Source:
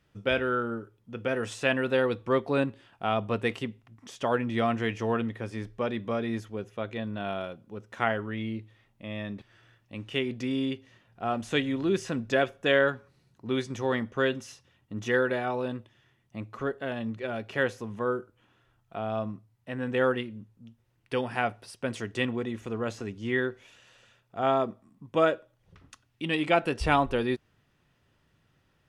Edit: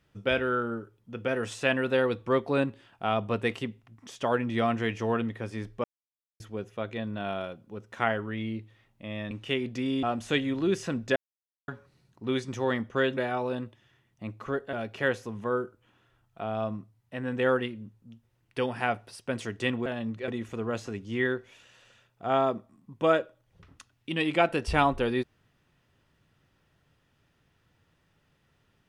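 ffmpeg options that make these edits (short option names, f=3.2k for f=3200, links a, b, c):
-filter_complex "[0:a]asplit=11[a][b][c][d][e][f][g][h][i][j][k];[a]atrim=end=5.84,asetpts=PTS-STARTPTS,afade=t=out:st=5.836:d=0.004:c=hsin[l];[b]atrim=start=5.84:end=6.4,asetpts=PTS-STARTPTS,volume=0[m];[c]atrim=start=6.4:end=9.312,asetpts=PTS-STARTPTS,afade=t=in:d=0.004:c=hsin[n];[d]atrim=start=9.958:end=10.682[o];[e]atrim=start=11.248:end=12.38,asetpts=PTS-STARTPTS,afade=t=out:st=1.128:d=0.004:c=hsin[p];[f]atrim=start=12.38:end=12.9,asetpts=PTS-STARTPTS,volume=0[q];[g]atrim=start=12.9:end=14.392,asetpts=PTS-STARTPTS,afade=t=in:d=0.004:c=hsin[r];[h]atrim=start=15.298:end=16.862[s];[i]atrim=start=17.278:end=22.412[t];[j]atrim=start=16.858:end=17.282[u];[k]atrim=start=22.408[v];[l][m][n]concat=n=3:v=0:a=1[w];[w][o]acrossfade=d=0.004:c1=hsin:c2=hsin[x];[p][q][r]concat=n=3:v=0:a=1[y];[x][y]acrossfade=d=0.004:c1=hsin:c2=hsin[z];[z][s]acrossfade=d=0.004:c1=hsin:c2=hsin[aa];[aa][t]acrossfade=d=0.004:c1=hsin:c2=hsin[ab];[ab][u]acrossfade=d=0.004:c1=hsin:c2=hsin[ac];[ac][v]acrossfade=d=0.004:c1=hsin:c2=hsin"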